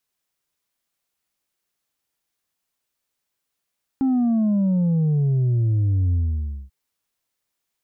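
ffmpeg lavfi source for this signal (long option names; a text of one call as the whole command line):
ffmpeg -f lavfi -i "aevalsrc='0.141*clip((2.69-t)/0.57,0,1)*tanh(1.41*sin(2*PI*270*2.69/log(65/270)*(exp(log(65/270)*t/2.69)-1)))/tanh(1.41)':duration=2.69:sample_rate=44100" out.wav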